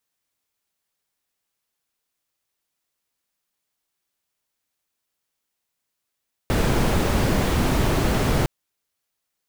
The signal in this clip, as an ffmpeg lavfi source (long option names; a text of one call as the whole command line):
ffmpeg -f lavfi -i "anoisesrc=color=brown:amplitude=0.495:duration=1.96:sample_rate=44100:seed=1" out.wav